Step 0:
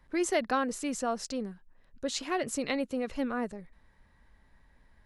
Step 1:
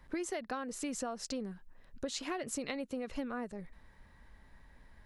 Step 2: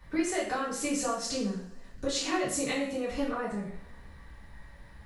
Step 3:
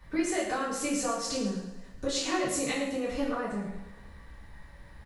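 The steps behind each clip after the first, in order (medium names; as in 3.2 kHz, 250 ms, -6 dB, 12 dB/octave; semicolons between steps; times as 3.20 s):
compression 12:1, threshold -38 dBFS, peak gain reduction 16 dB; trim +3.5 dB
two-slope reverb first 0.53 s, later 2.1 s, from -25 dB, DRR -8 dB
feedback delay 109 ms, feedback 43%, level -10.5 dB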